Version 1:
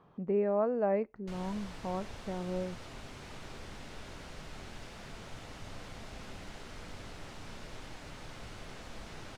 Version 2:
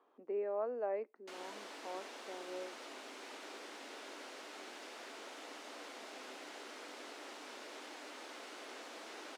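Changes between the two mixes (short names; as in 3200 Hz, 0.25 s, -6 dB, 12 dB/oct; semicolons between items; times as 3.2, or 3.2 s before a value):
speech -7.5 dB; master: add steep high-pass 270 Hz 48 dB/oct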